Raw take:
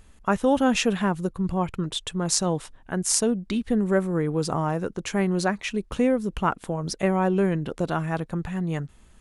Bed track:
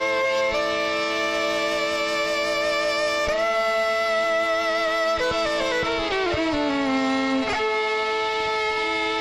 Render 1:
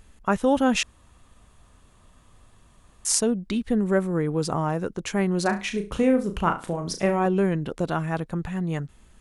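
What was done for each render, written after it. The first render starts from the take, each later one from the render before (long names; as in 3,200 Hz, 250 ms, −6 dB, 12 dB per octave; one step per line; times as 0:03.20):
0:00.83–0:03.05: fill with room tone
0:05.42–0:07.26: flutter between parallel walls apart 6 metres, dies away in 0.29 s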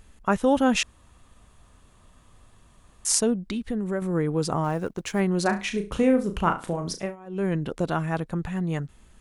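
0:03.35–0:04.02: downward compressor 2 to 1, threshold −28 dBFS
0:04.64–0:05.20: mu-law and A-law mismatch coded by A
0:06.87–0:07.55: duck −23 dB, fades 0.29 s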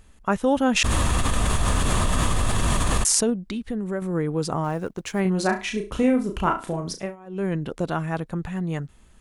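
0:00.76–0:03.30: envelope flattener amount 100%
0:05.22–0:06.81: double-tracking delay 32 ms −6 dB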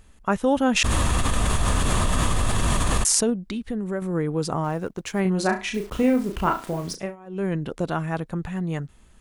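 0:05.74–0:06.95: hold until the input has moved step −40.5 dBFS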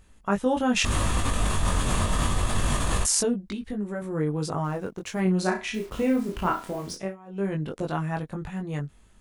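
chorus effect 0.25 Hz, delay 19.5 ms, depth 2.9 ms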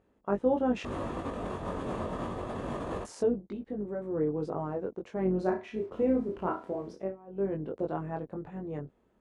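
sub-octave generator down 2 octaves, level −6 dB
resonant band-pass 440 Hz, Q 1.2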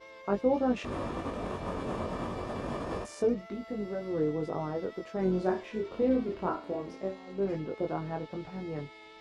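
mix in bed track −27.5 dB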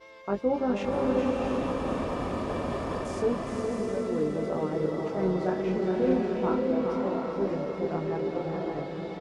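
on a send: repeating echo 416 ms, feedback 58%, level −7 dB
on the sum: slow-attack reverb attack 690 ms, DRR 0.5 dB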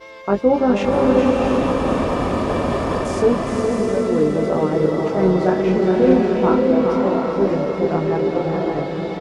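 level +11 dB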